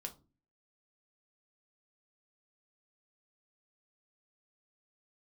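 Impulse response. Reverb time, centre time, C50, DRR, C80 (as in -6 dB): 0.35 s, 10 ms, 16.0 dB, 3.5 dB, 23.0 dB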